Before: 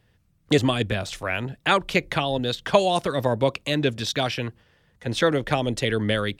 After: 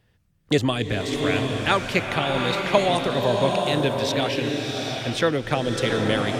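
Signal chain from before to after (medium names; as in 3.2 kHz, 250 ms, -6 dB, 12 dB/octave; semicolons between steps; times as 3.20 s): swelling reverb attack 780 ms, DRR 1.5 dB; trim -1 dB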